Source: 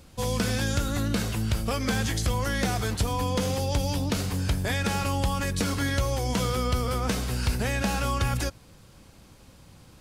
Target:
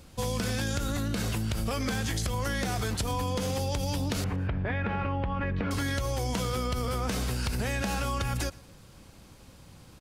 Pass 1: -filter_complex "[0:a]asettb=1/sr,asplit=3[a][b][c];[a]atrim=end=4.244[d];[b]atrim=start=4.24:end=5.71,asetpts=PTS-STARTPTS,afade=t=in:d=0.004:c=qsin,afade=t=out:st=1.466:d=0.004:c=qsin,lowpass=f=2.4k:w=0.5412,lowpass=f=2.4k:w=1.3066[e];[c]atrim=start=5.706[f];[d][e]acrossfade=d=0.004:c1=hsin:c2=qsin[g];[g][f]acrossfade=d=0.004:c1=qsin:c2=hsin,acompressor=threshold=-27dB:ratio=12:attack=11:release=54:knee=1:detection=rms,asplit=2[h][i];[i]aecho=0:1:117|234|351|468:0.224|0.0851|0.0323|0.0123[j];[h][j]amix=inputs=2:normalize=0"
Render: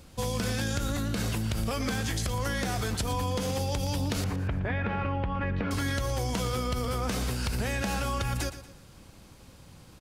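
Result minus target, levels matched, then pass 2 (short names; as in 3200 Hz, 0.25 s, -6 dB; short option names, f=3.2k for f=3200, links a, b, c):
echo-to-direct +10.5 dB
-filter_complex "[0:a]asettb=1/sr,asplit=3[a][b][c];[a]atrim=end=4.244[d];[b]atrim=start=4.24:end=5.71,asetpts=PTS-STARTPTS,afade=t=in:d=0.004:c=qsin,afade=t=out:st=1.466:d=0.004:c=qsin,lowpass=f=2.4k:w=0.5412,lowpass=f=2.4k:w=1.3066[e];[c]atrim=start=5.706[f];[d][e]acrossfade=d=0.004:c1=hsin:c2=qsin[g];[g][f]acrossfade=d=0.004:c1=qsin:c2=hsin,acompressor=threshold=-27dB:ratio=12:attack=11:release=54:knee=1:detection=rms,asplit=2[h][i];[i]aecho=0:1:117|234:0.0668|0.0254[j];[h][j]amix=inputs=2:normalize=0"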